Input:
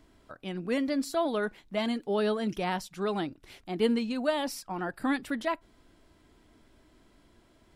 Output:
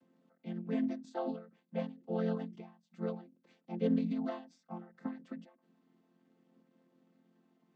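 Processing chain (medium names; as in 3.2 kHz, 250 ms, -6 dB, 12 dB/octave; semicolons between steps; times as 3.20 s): vocoder on a held chord major triad, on F3; endings held to a fixed fall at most 130 dB/s; trim -4 dB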